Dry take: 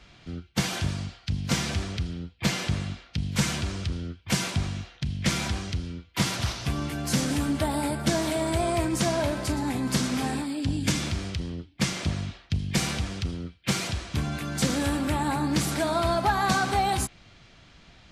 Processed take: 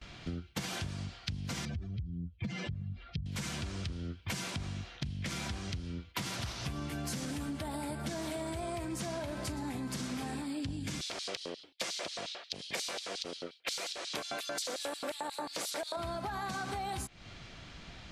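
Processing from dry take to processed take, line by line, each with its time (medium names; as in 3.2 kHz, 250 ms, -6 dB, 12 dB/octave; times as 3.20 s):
1.65–3.26 s: spectral contrast enhancement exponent 2
11.01–15.97 s: LFO high-pass square 5.6 Hz 530–4000 Hz
whole clip: gate with hold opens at -46 dBFS; peak limiter -18.5 dBFS; compression 16:1, threshold -38 dBFS; trim +3.5 dB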